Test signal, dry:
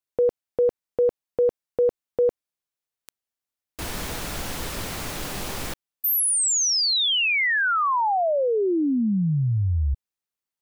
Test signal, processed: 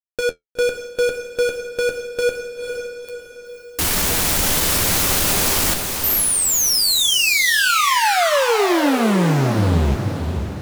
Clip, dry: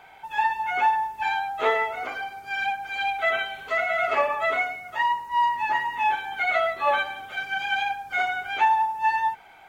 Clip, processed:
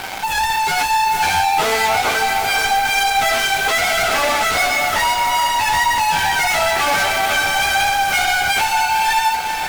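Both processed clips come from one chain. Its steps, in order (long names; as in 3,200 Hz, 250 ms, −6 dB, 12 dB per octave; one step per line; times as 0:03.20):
high-shelf EQ 5,200 Hz +9.5 dB
in parallel at +1 dB: downward compressor, threshold −27 dBFS
on the sum: fuzz pedal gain 41 dB, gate −42 dBFS
bit-depth reduction 6 bits, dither none
flanger 1 Hz, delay 10 ms, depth 3.1 ms, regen −50%
on a send: feedback delay with all-pass diffusion 495 ms, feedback 47%, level −6 dB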